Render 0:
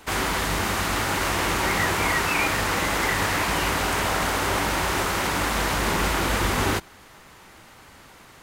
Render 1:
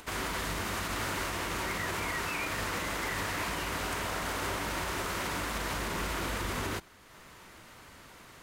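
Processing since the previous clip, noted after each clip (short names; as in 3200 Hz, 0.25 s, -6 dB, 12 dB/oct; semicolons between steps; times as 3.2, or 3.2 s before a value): notch 810 Hz, Q 12; upward compressor, threshold -37 dBFS; limiter -16.5 dBFS, peak gain reduction 6 dB; gain -8 dB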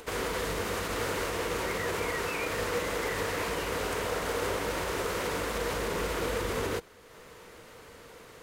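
bell 470 Hz +14.5 dB 0.38 oct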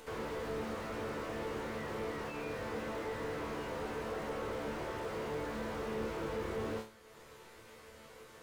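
resonator bank D2 fifth, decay 0.32 s; slew limiter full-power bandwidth 5.9 Hz; gain +5.5 dB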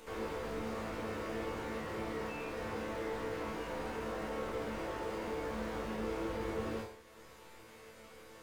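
plate-style reverb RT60 0.57 s, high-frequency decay 0.85×, DRR 1.5 dB; gain -2.5 dB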